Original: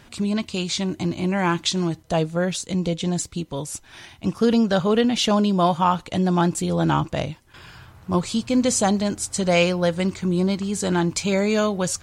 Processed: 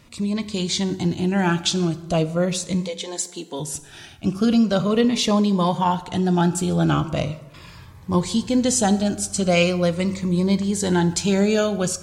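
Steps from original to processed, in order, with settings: 2.80–3.59 s: high-pass 560 Hz -> 230 Hz 24 dB/octave; plate-style reverb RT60 1.2 s, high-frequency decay 0.6×, DRR 12 dB; level rider gain up to 4 dB; Shepard-style phaser falling 0.4 Hz; trim -1.5 dB

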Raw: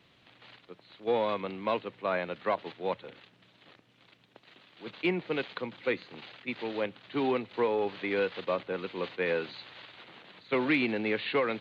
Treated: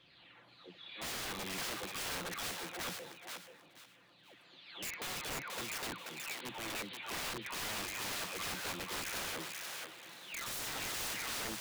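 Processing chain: delay that grows with frequency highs early, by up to 647 ms; integer overflow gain 33 dB; thinning echo 482 ms, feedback 26%, high-pass 710 Hz, level -3 dB; trim -3 dB

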